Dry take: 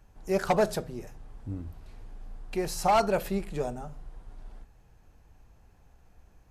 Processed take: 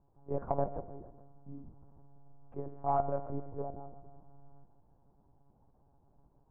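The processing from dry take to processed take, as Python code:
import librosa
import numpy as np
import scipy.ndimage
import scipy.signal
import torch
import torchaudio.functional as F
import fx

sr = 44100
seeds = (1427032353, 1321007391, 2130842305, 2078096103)

p1 = fx.wiener(x, sr, points=15)
p2 = fx.low_shelf(p1, sr, hz=81.0, db=-8.5)
p3 = p2 + fx.echo_feedback(p2, sr, ms=148, feedback_pct=48, wet_db=-16.0, dry=0)
p4 = fx.rider(p3, sr, range_db=3, speed_s=2.0)
p5 = fx.hum_notches(p4, sr, base_hz=60, count=6)
p6 = fx.lpc_monotone(p5, sr, seeds[0], pitch_hz=140.0, order=10)
p7 = scipy.signal.sosfilt(scipy.signal.cheby1(3, 1.0, 1000.0, 'lowpass', fs=sr, output='sos'), p6)
p8 = fx.comb_fb(p7, sr, f0_hz=100.0, decay_s=1.1, harmonics='all', damping=0.0, mix_pct=40)
y = F.gain(torch.from_numpy(p8), -3.0).numpy()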